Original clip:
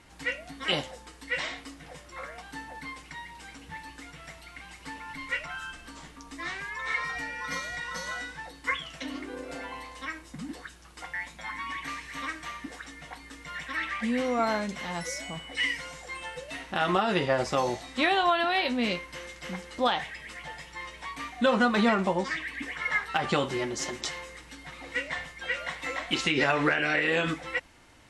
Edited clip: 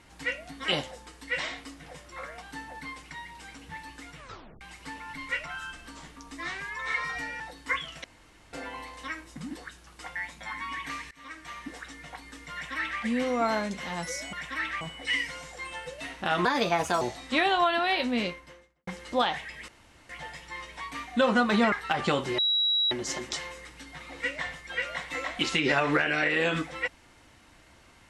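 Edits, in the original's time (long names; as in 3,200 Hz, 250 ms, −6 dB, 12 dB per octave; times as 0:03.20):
0:04.17: tape stop 0.44 s
0:07.40–0:08.38: remove
0:09.02–0:09.51: fill with room tone
0:12.09–0:12.68: fade in, from −23 dB
0:13.51–0:13.99: duplicate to 0:15.31
0:16.95–0:17.67: play speed 128%
0:18.76–0:19.53: fade out and dull
0:20.34: splice in room tone 0.41 s
0:21.97–0:22.97: remove
0:23.63: insert tone 3,880 Hz −22 dBFS 0.53 s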